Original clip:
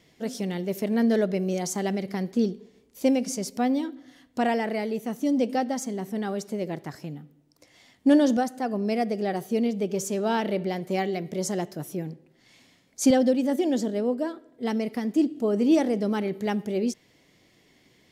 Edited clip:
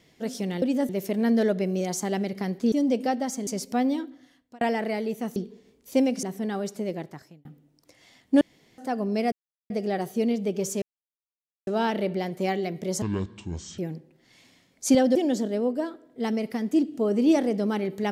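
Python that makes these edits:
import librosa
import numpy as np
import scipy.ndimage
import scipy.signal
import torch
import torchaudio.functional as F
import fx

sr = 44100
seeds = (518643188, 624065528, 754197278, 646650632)

y = fx.edit(x, sr, fx.swap(start_s=2.45, length_s=0.87, other_s=5.21, other_length_s=0.75),
    fx.fade_out_span(start_s=3.85, length_s=0.61),
    fx.fade_out_span(start_s=6.61, length_s=0.57),
    fx.room_tone_fill(start_s=8.14, length_s=0.37),
    fx.insert_silence(at_s=9.05, length_s=0.38),
    fx.insert_silence(at_s=10.17, length_s=0.85),
    fx.speed_span(start_s=11.52, length_s=0.42, speed=0.55),
    fx.move(start_s=13.31, length_s=0.27, to_s=0.62), tone=tone)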